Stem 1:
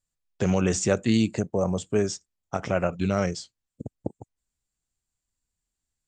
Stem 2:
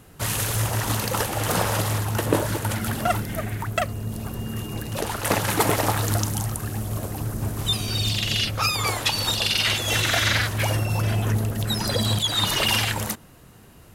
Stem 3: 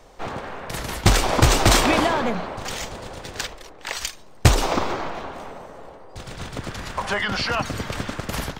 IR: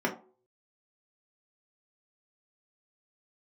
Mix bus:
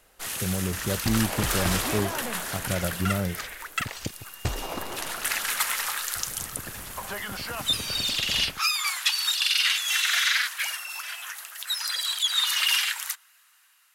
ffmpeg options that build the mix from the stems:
-filter_complex "[0:a]aemphasis=mode=reproduction:type=bsi,volume=-13dB[link_01];[1:a]highpass=frequency=1300:width=0.5412,highpass=frequency=1300:width=1.3066,flanger=delay=0.4:depth=8.1:regen=-71:speed=0.75:shape=sinusoidal,volume=-1dB[link_02];[2:a]acompressor=threshold=-23dB:ratio=1.5,volume=-14.5dB[link_03];[link_01][link_02][link_03]amix=inputs=3:normalize=0,dynaudnorm=framelen=380:gausssize=5:maxgain=5dB"

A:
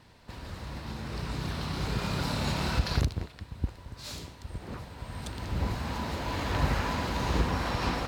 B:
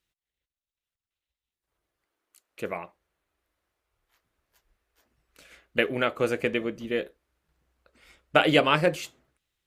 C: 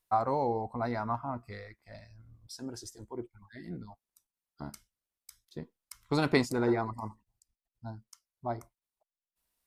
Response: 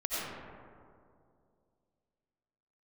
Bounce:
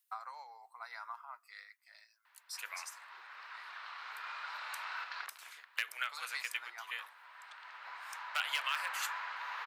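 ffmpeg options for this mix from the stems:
-filter_complex "[0:a]lowpass=1700,adelay=2250,volume=0dB[link_01];[1:a]agate=range=-12dB:threshold=-59dB:ratio=16:detection=peak,asoftclip=type=hard:threshold=-11.5dB,volume=0.5dB[link_02];[2:a]volume=-1dB[link_03];[link_02][link_03]amix=inputs=2:normalize=0,tremolo=f=7.5:d=0.33,acompressor=threshold=-32dB:ratio=2.5,volume=0dB[link_04];[link_01][link_04]amix=inputs=2:normalize=0,highpass=frequency=1200:width=0.5412,highpass=frequency=1200:width=1.3066,highshelf=frequency=9500:gain=10"

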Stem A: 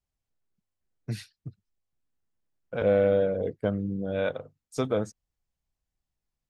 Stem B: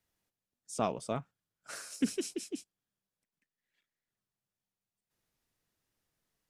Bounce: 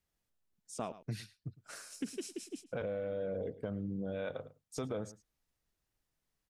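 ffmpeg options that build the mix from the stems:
ffmpeg -i stem1.wav -i stem2.wav -filter_complex "[0:a]alimiter=limit=-22dB:level=0:latency=1:release=24,acontrast=36,volume=-8.5dB,asplit=2[link_01][link_02];[link_02]volume=-19.5dB[link_03];[1:a]volume=-4.5dB,asplit=3[link_04][link_05][link_06];[link_04]atrim=end=0.92,asetpts=PTS-STARTPTS,afade=type=out:start_time=0.916:duration=0.004:curve=hsin[link_07];[link_05]atrim=start=0.92:end=1.58,asetpts=PTS-STARTPTS,volume=0[link_08];[link_06]atrim=start=1.58,asetpts=PTS-STARTPTS,afade=type=in:duration=0.004:curve=hsin[link_09];[link_07][link_08][link_09]concat=n=3:v=0:a=1,asplit=2[link_10][link_11];[link_11]volume=-18.5dB[link_12];[link_03][link_12]amix=inputs=2:normalize=0,aecho=0:1:108:1[link_13];[link_01][link_10][link_13]amix=inputs=3:normalize=0,acompressor=threshold=-34dB:ratio=6" out.wav

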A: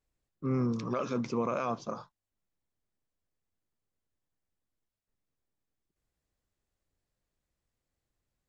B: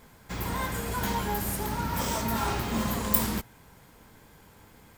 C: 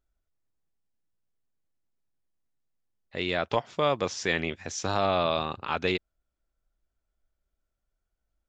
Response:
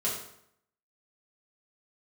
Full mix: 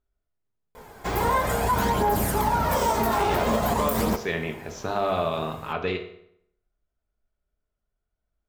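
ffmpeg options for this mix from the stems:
-filter_complex "[1:a]equalizer=frequency=660:width=0.68:gain=11,adelay=750,volume=2dB,asplit=2[link_01][link_02];[link_02]volume=-19dB[link_03];[2:a]aemphasis=mode=reproduction:type=75kf,volume=-3dB,asplit=2[link_04][link_05];[link_05]volume=-7dB[link_06];[link_01]aphaser=in_gain=1:out_gain=1:delay=2.8:decay=0.43:speed=0.48:type=triangular,alimiter=limit=-13dB:level=0:latency=1:release=57,volume=0dB[link_07];[3:a]atrim=start_sample=2205[link_08];[link_03][link_06]amix=inputs=2:normalize=0[link_09];[link_09][link_08]afir=irnorm=-1:irlink=0[link_10];[link_04][link_07][link_10]amix=inputs=3:normalize=0,alimiter=limit=-13.5dB:level=0:latency=1:release=109"

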